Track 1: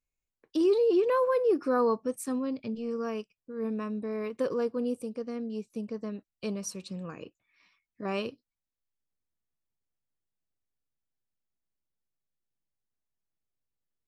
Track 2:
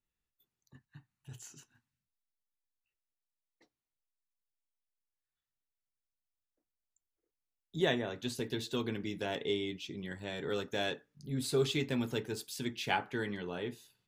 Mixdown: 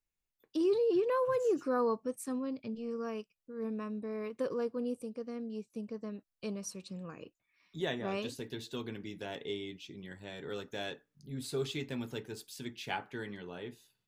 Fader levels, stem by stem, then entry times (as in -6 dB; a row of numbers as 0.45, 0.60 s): -5.0, -5.0 dB; 0.00, 0.00 s